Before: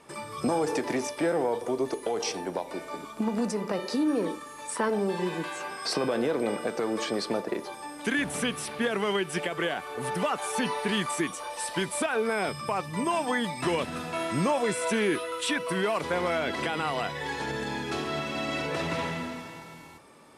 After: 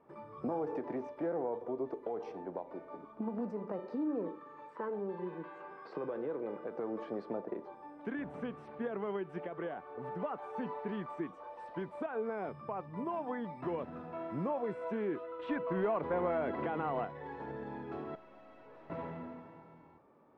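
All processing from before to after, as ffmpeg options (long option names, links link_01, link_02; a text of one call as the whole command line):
ffmpeg -i in.wav -filter_complex "[0:a]asettb=1/sr,asplit=3[link_01][link_02][link_03];[link_01]atrim=end=4.294[link_04];[link_02]atrim=start=4.29:end=6.71,asetpts=PTS-STARTPTS,afade=type=in:duration=0.004:curve=qsin,afade=type=out:start_time=2.416:duration=0.004:curve=qsin,acompressor=mode=upward:threshold=-30dB:ratio=2.5:attack=3.2:release=140:knee=2.83:detection=peak,highpass=130,equalizer=frequency=240:width_type=q:width=4:gain=-8,equalizer=frequency=690:width_type=q:width=4:gain=-8,equalizer=frequency=5800:width_type=q:width=4:gain=-6,lowpass=frequency=7400:width=0.5412,lowpass=frequency=7400:width=1.3066[link_05];[link_03]atrim=start=6.706[link_06];[link_04][link_05]acrossfade=duration=0.004:curve1=hsin:curve2=qsin[link_07];[link_07][link_06]acrossfade=duration=0.004:curve1=qsin:curve2=hsin,asettb=1/sr,asplit=3[link_08][link_09][link_10];[link_08]atrim=end=15.394[link_11];[link_09]atrim=start=15.39:end=17.05,asetpts=PTS-STARTPTS,afade=type=in:duration=0.004:curve=qsin,afade=type=out:start_time=1.656:duration=0.004:curve=qsin,lowpass=4300,acontrast=33,aeval=exprs='clip(val(0),-1,0.126)':channel_layout=same[link_12];[link_10]atrim=start=17.046[link_13];[link_11][link_12]acrossfade=duration=0.004:curve1=hsin:curve2=qsin[link_14];[link_14][link_13]acrossfade=duration=0.004:curve1=qsin:curve2=hsin,asettb=1/sr,asplit=3[link_15][link_16][link_17];[link_15]atrim=end=18.154[link_18];[link_16]atrim=start=18.15:end=18.9,asetpts=PTS-STARTPTS,afade=type=in:duration=0.004:curve=qsin,afade=type=out:start_time=0.746:duration=0.004:curve=qsin,highpass=frequency=660:poles=1,afreqshift=-14,aeval=exprs='(tanh(126*val(0)+0.55)-tanh(0.55))/126':channel_layout=same[link_19];[link_17]atrim=start=18.896[link_20];[link_18][link_19]acrossfade=duration=0.004:curve1=hsin:curve2=qsin[link_21];[link_21][link_20]acrossfade=duration=0.004:curve1=qsin:curve2=hsin,lowpass=1000,lowshelf=frequency=140:gain=-5,volume=-8dB" out.wav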